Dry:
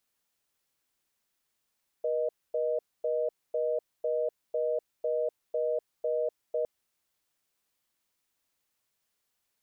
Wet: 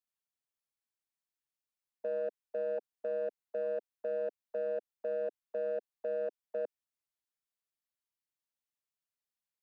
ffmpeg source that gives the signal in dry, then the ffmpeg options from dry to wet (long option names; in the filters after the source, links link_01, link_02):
-f lavfi -i "aevalsrc='0.0355*(sin(2*PI*480*t)+sin(2*PI*620*t))*clip(min(mod(t,0.5),0.25-mod(t,0.5))/0.005,0,1)':duration=4.61:sample_rate=44100"
-filter_complex "[0:a]afwtdn=0.0112,acrossover=split=350|400|460[link_01][link_02][link_03][link_04];[link_02]acrusher=bits=5:mix=0:aa=0.5[link_05];[link_04]alimiter=level_in=15dB:limit=-24dB:level=0:latency=1,volume=-15dB[link_06];[link_01][link_05][link_03][link_06]amix=inputs=4:normalize=0"